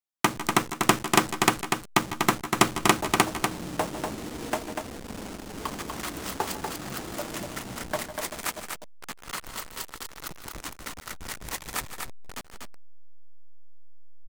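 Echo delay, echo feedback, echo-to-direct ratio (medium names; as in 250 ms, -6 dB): 151 ms, no regular repeats, -4.5 dB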